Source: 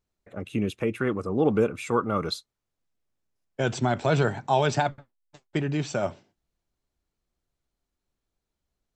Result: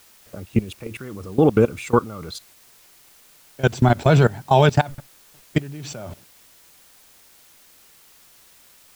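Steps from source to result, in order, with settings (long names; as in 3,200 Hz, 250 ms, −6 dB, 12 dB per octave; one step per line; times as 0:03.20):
low-shelf EQ 120 Hz +12 dB
output level in coarse steps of 21 dB
bit-depth reduction 10 bits, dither triangular
level +8 dB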